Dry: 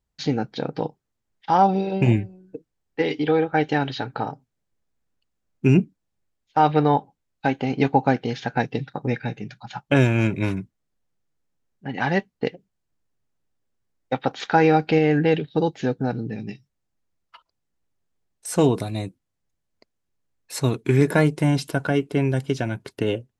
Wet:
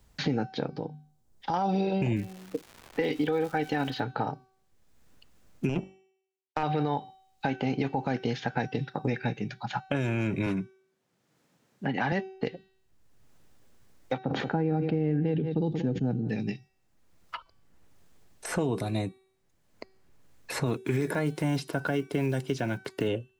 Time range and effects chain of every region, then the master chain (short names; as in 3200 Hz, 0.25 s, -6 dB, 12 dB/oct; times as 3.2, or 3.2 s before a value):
0.68–1.54 bell 2100 Hz -11.5 dB 1.9 oct + notches 50/100/150/200/250 Hz + compressor 2:1, threshold -35 dBFS
2.16–3.99 comb 4 ms, depth 36% + crackle 400/s -36 dBFS + mismatched tape noise reduction decoder only
5.69–6.63 de-hum 47.32 Hz, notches 8 + power-law curve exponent 2
10.46–12.12 HPF 120 Hz 24 dB/oct + high shelf 7500 Hz -6.5 dB
14.18–16.29 band-pass 150 Hz, Q 0.74 + echo 0.182 s -18 dB + sustainer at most 43 dB/s
20.66–23.08 block floating point 7-bit + low shelf 73 Hz -11.5 dB
whole clip: de-hum 381 Hz, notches 31; limiter -16 dBFS; three-band squash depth 70%; gain -2.5 dB